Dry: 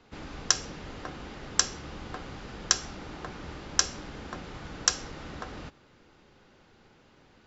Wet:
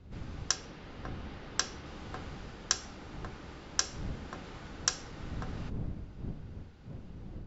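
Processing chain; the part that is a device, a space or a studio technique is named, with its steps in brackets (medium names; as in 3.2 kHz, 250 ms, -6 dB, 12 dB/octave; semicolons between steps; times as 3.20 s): 0.55–1.86 s: low-pass 5.3 kHz 12 dB/octave; smartphone video outdoors (wind noise 140 Hz -39 dBFS; level rider gain up to 5 dB; trim -8 dB; AAC 64 kbps 22.05 kHz)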